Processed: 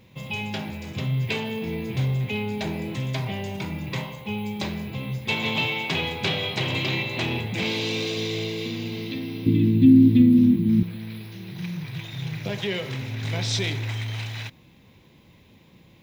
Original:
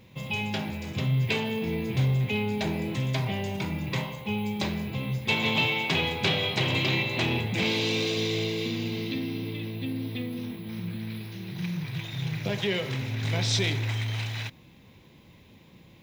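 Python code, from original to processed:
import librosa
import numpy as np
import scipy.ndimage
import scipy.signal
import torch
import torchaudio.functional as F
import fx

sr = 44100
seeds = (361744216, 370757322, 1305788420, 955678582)

y = fx.low_shelf_res(x, sr, hz=400.0, db=13.0, q=3.0, at=(9.46, 10.83))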